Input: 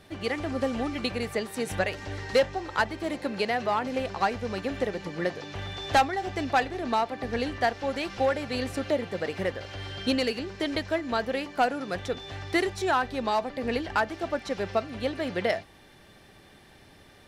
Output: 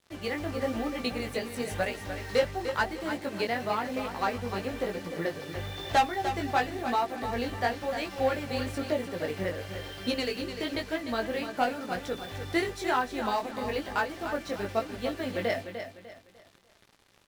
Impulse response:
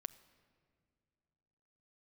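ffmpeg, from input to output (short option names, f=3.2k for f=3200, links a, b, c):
-af "flanger=delay=16:depth=5.2:speed=1,acrusher=bits=7:mix=0:aa=0.5,aecho=1:1:299|598|897|1196:0.355|0.117|0.0386|0.0128"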